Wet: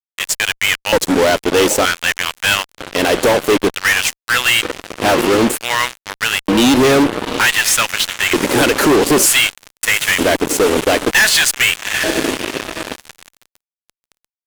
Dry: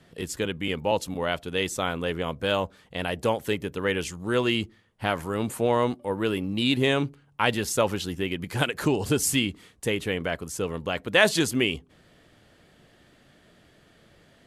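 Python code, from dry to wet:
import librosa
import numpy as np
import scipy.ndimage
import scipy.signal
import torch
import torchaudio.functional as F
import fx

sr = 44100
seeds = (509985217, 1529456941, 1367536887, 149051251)

y = fx.echo_diffused(x, sr, ms=804, feedback_pct=60, wet_db=-15.0)
y = fx.filter_lfo_highpass(y, sr, shape='square', hz=0.54, low_hz=300.0, high_hz=1800.0, q=1.9)
y = fx.fuzz(y, sr, gain_db=34.0, gate_db=-35.0)
y = F.gain(torch.from_numpy(y), 4.5).numpy()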